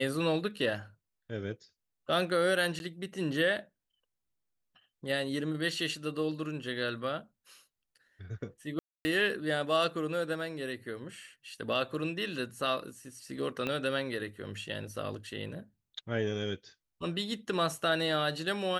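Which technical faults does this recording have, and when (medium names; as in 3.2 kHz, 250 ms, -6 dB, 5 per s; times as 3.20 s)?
2.79–2.80 s: dropout 11 ms
8.79–9.05 s: dropout 260 ms
13.67 s: pop -20 dBFS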